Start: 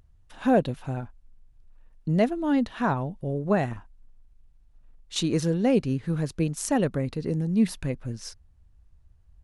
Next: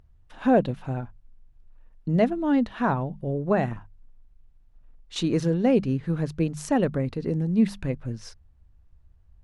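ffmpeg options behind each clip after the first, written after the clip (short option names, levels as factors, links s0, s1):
-af "lowpass=f=3000:p=1,bandreject=f=50:t=h:w=6,bandreject=f=100:t=h:w=6,bandreject=f=150:t=h:w=6,bandreject=f=200:t=h:w=6,volume=1.19"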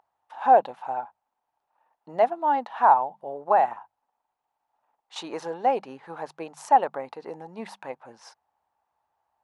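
-af "highpass=f=840:t=q:w=5.8,tiltshelf=f=1100:g=4.5,volume=0.841"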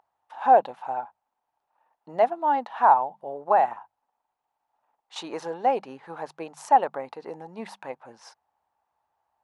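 -af anull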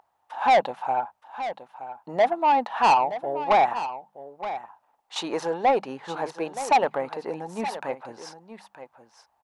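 -af "asoftclip=type=tanh:threshold=0.1,aecho=1:1:922:0.237,volume=2"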